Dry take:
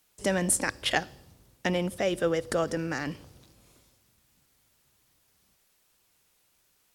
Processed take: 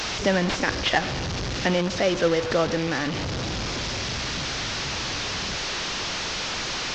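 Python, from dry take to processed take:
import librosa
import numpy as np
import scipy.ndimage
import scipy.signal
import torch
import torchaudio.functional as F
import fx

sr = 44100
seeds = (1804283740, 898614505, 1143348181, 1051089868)

y = fx.delta_mod(x, sr, bps=32000, step_db=-27.0)
y = y * librosa.db_to_amplitude(5.0)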